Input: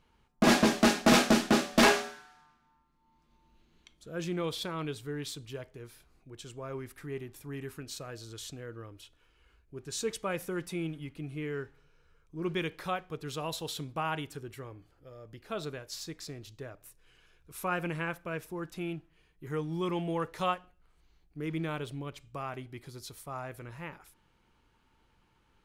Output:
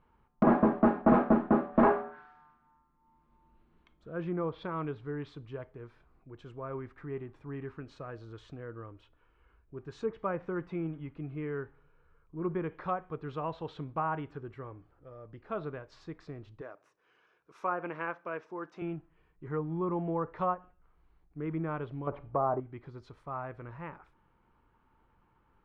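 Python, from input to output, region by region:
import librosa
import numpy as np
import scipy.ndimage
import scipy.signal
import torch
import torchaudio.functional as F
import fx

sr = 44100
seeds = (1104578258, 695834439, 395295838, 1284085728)

y = fx.chain(x, sr, fx.highpass(hz=320.0, slope=12),
    fx.peak_eq(hz=5900.0, db=11.5, octaves=0.63), at=(16.61, 18.82))
y = fx.chain(y, sr, fx.law_mismatch(coded='mu'),
    fx.lowpass(hz=1300.0, slope=6),
    fx.peak_eq(hz=670.0, db=11.5, octaves=2.0), at=(22.07, 22.6))
y = scipy.signal.sosfilt(scipy.signal.butter(2, 1600.0, 'lowpass', fs=sr, output='sos'), y)
y = fx.env_lowpass_down(y, sr, base_hz=1100.0, full_db=-28.0)
y = fx.peak_eq(y, sr, hz=1100.0, db=4.5, octaves=0.73)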